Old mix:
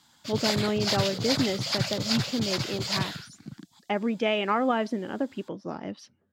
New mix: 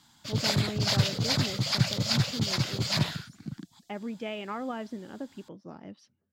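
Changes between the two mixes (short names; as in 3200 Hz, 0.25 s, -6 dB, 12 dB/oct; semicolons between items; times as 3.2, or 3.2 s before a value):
speech -11.0 dB; master: add tone controls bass +5 dB, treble 0 dB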